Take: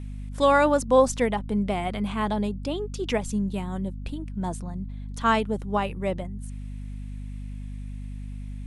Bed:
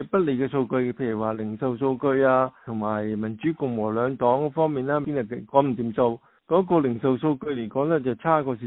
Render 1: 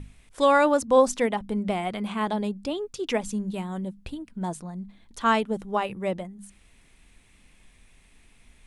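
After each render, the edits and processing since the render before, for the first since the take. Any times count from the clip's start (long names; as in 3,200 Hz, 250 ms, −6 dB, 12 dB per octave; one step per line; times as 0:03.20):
mains-hum notches 50/100/150/200/250 Hz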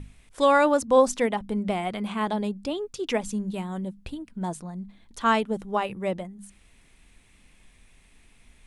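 no processing that can be heard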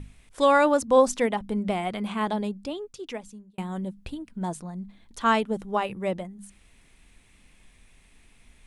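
0:02.30–0:03.58: fade out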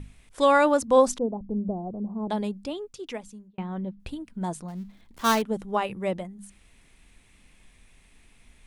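0:01.18–0:02.30: Gaussian smoothing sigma 13 samples
0:03.48–0:04.00: high-frequency loss of the air 270 metres
0:04.68–0:05.42: gap after every zero crossing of 0.13 ms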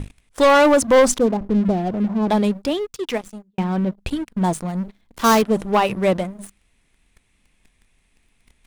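leveller curve on the samples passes 3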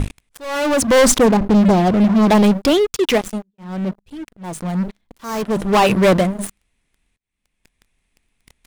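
leveller curve on the samples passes 3
volume swells 710 ms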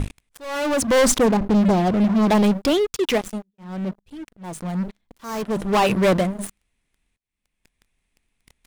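level −4.5 dB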